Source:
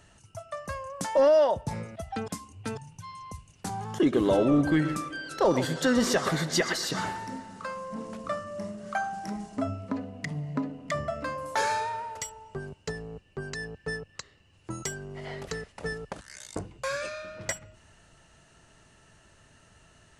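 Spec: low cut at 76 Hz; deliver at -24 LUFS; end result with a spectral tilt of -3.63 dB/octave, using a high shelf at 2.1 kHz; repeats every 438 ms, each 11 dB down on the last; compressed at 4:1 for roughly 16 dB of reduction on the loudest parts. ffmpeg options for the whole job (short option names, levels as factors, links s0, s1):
-af "highpass=76,highshelf=f=2100:g=6,acompressor=threshold=0.0126:ratio=4,aecho=1:1:438|876|1314:0.282|0.0789|0.0221,volume=6.31"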